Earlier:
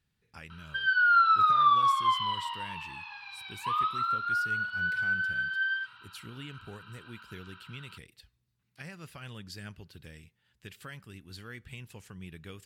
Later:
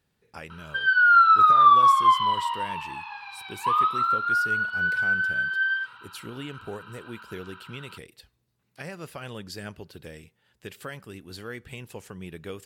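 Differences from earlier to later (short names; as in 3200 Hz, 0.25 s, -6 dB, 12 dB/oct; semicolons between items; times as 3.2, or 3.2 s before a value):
speech: add high shelf 4400 Hz +7.5 dB; master: add bell 540 Hz +13 dB 2.5 oct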